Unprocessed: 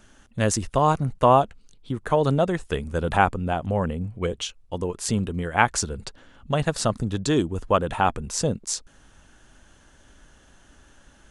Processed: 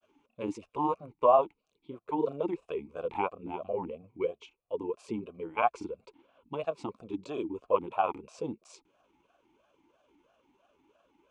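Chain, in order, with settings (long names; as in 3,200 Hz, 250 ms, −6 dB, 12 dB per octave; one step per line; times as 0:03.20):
granular cloud, spray 22 ms, pitch spread up and down by 0 semitones
formant filter swept between two vowels a-u 3 Hz
level +3 dB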